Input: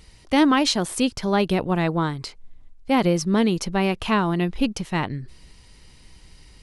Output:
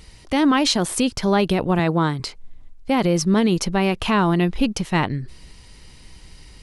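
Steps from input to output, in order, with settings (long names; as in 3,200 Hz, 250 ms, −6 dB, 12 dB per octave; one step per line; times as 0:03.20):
0:01.79–0:02.20: high-pass filter 74 Hz 24 dB per octave
brickwall limiter −14 dBFS, peak gain reduction 7.5 dB
level +4.5 dB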